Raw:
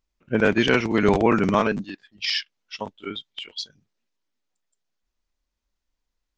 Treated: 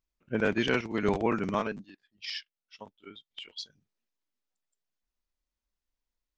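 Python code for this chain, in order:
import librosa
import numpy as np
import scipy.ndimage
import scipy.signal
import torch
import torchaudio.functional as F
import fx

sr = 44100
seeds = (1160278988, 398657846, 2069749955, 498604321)

y = fx.upward_expand(x, sr, threshold_db=-32.0, expansion=1.5, at=(0.81, 3.31))
y = F.gain(torch.from_numpy(y), -8.0).numpy()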